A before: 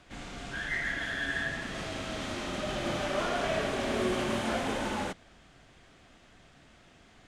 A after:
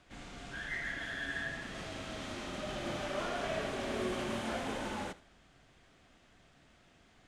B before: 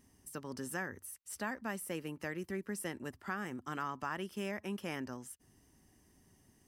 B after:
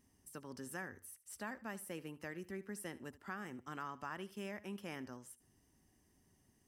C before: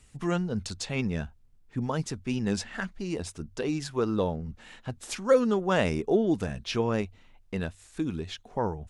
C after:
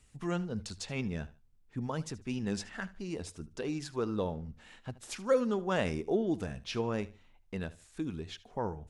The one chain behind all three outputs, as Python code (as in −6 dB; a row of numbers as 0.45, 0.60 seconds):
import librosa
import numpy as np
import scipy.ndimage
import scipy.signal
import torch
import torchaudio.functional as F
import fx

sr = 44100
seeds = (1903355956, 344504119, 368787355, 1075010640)

y = fx.echo_feedback(x, sr, ms=75, feedback_pct=28, wet_db=-18.5)
y = y * librosa.db_to_amplitude(-6.0)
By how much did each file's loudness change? −6.0, −6.0, −6.0 LU